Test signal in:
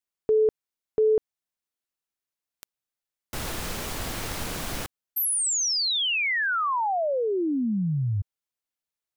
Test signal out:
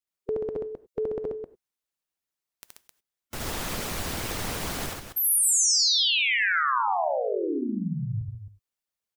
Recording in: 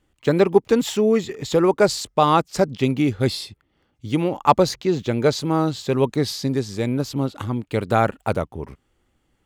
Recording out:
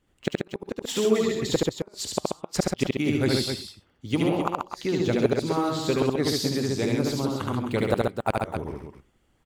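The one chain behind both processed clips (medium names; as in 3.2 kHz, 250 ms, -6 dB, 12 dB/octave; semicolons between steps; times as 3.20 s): gated-style reverb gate 120 ms flat, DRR 11.5 dB; inverted gate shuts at -8 dBFS, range -39 dB; loudspeakers at several distances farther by 25 m -1 dB, 46 m -4 dB, 90 m -8 dB; harmonic-percussive split harmonic -8 dB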